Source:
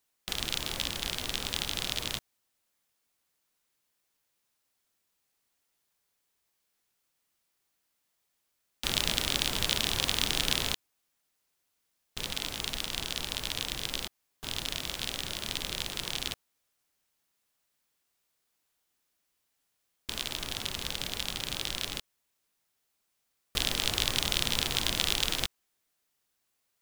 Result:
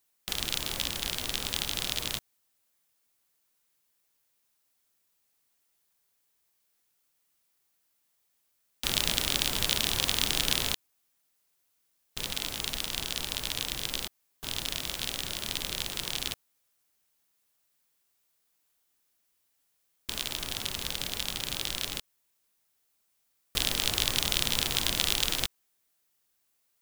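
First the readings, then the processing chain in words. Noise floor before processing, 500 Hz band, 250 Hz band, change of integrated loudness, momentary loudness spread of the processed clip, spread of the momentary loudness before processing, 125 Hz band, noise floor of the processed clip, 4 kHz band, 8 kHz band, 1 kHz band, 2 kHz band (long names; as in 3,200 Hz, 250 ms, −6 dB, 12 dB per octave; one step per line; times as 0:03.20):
−79 dBFS, 0.0 dB, 0.0 dB, +1.5 dB, 9 LU, 9 LU, 0.0 dB, −75 dBFS, +1.0 dB, +2.5 dB, 0.0 dB, +0.5 dB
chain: high-shelf EQ 8,800 Hz +6.5 dB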